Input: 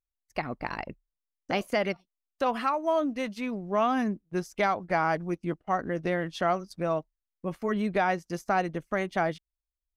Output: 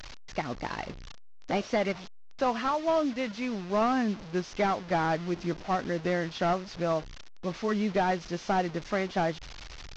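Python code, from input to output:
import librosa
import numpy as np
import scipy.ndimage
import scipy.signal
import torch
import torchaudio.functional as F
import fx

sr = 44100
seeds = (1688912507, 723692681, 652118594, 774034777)

y = fx.delta_mod(x, sr, bps=32000, step_db=-37.0)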